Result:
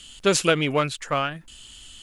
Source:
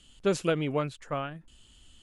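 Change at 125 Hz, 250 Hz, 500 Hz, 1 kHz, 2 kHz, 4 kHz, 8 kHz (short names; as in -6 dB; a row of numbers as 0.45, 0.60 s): +4.5, +5.0, +5.5, +9.5, +12.0, +14.0, +15.5 dB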